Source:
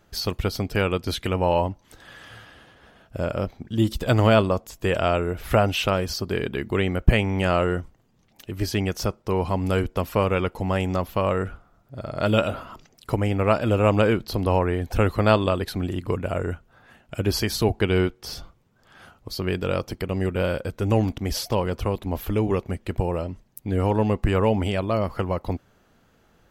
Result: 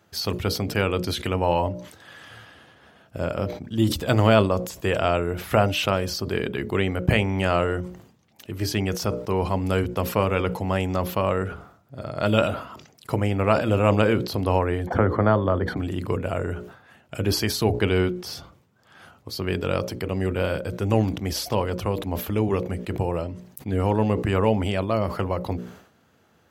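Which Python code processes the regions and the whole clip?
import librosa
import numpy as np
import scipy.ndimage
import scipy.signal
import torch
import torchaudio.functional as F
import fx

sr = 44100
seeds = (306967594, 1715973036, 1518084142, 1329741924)

y = fx.chain(x, sr, fx.savgol(points=41),
    fx.band_squash(depth_pct=70), at=(14.87, 15.77))
y = scipy.signal.sosfilt(scipy.signal.butter(4, 74.0, 'highpass', fs=sr, output='sos'), y)
y = fx.hum_notches(y, sr, base_hz=60, count=10)
y = fx.sustainer(y, sr, db_per_s=94.0)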